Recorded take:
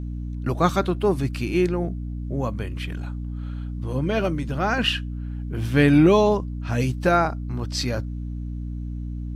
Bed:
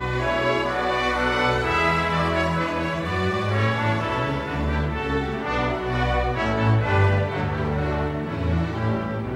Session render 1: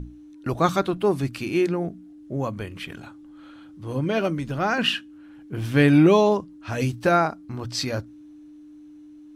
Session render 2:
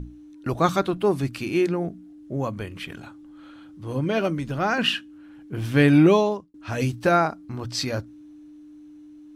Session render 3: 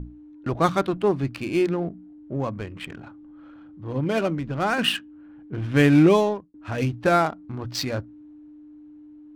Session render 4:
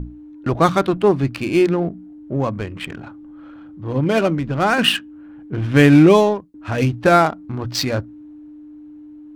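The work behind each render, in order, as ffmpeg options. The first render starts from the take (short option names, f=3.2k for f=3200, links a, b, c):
-af "bandreject=f=60:t=h:w=6,bandreject=f=120:t=h:w=6,bandreject=f=180:t=h:w=6,bandreject=f=240:t=h:w=6"
-filter_complex "[0:a]asplit=2[a][b];[a]atrim=end=6.54,asetpts=PTS-STARTPTS,afade=t=out:st=6.1:d=0.44[c];[b]atrim=start=6.54,asetpts=PTS-STARTPTS,afade=t=in:d=0.004:c=hsin[d];[c][d]concat=n=2:v=0:a=1"
-af "adynamicsmooth=sensitivity=6:basefreq=1.4k"
-af "volume=6.5dB,alimiter=limit=-2dB:level=0:latency=1"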